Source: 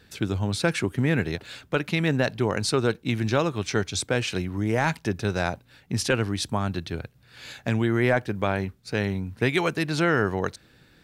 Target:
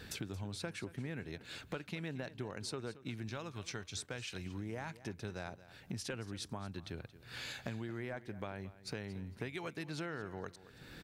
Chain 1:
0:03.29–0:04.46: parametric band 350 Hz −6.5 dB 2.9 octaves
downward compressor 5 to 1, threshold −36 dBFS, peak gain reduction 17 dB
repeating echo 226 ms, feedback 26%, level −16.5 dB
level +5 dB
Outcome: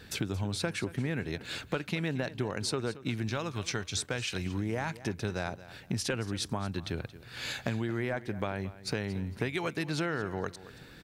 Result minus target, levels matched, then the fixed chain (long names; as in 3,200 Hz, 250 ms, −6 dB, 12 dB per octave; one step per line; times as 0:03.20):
downward compressor: peak gain reduction −9.5 dB
0:03.29–0:04.46: parametric band 350 Hz −6.5 dB 2.9 octaves
downward compressor 5 to 1, threshold −48 dBFS, peak gain reduction 27 dB
repeating echo 226 ms, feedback 26%, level −16.5 dB
level +5 dB